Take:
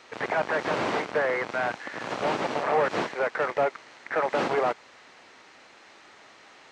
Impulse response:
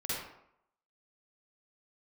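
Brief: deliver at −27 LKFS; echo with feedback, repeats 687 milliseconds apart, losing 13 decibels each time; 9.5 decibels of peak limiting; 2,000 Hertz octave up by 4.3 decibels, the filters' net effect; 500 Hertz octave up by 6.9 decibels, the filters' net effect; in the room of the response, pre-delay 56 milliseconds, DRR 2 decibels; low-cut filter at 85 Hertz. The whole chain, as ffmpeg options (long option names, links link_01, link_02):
-filter_complex "[0:a]highpass=85,equalizer=frequency=500:width_type=o:gain=8,equalizer=frequency=2000:width_type=o:gain=5,alimiter=limit=-16.5dB:level=0:latency=1,aecho=1:1:687|1374|2061:0.224|0.0493|0.0108,asplit=2[link_01][link_02];[1:a]atrim=start_sample=2205,adelay=56[link_03];[link_02][link_03]afir=irnorm=-1:irlink=0,volume=-6.5dB[link_04];[link_01][link_04]amix=inputs=2:normalize=0,volume=-3dB"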